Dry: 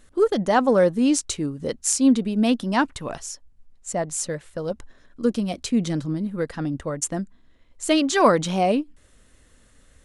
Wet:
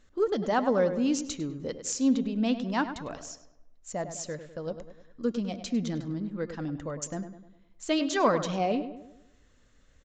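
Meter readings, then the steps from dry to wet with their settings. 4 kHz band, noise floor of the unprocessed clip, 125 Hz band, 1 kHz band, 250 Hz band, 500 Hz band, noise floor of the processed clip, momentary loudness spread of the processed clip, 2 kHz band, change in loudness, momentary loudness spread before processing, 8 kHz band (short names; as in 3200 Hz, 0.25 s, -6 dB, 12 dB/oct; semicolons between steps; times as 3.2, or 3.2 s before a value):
-7.5 dB, -57 dBFS, -7.0 dB, -7.0 dB, -7.0 dB, -7.0 dB, -62 dBFS, 14 LU, -7.0 dB, -7.0 dB, 14 LU, -10.0 dB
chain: de-hum 349.9 Hz, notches 20; on a send: darkening echo 0.101 s, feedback 48%, low-pass 2500 Hz, level -10 dB; on the sum: downsampling 16000 Hz; gain -7.5 dB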